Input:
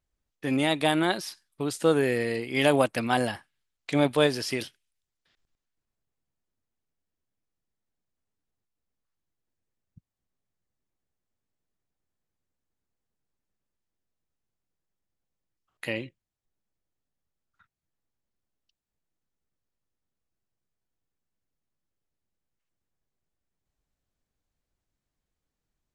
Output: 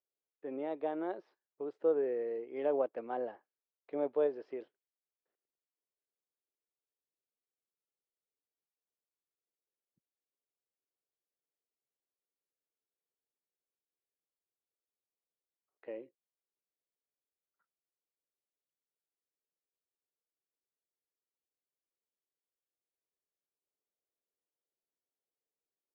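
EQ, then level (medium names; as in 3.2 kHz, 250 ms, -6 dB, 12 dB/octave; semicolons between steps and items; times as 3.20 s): ladder band-pass 520 Hz, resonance 45%; distance through air 71 m; 0.0 dB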